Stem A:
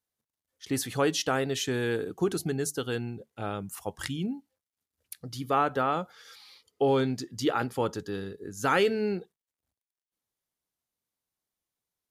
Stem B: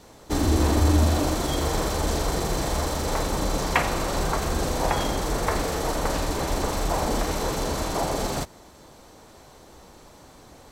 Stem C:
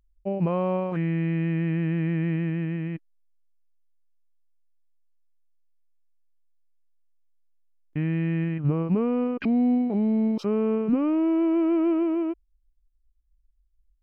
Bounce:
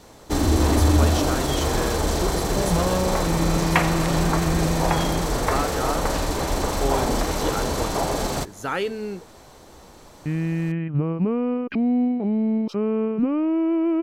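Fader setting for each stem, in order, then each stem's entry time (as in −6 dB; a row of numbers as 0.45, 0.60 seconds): −2.0, +2.0, +1.0 decibels; 0.00, 0.00, 2.30 seconds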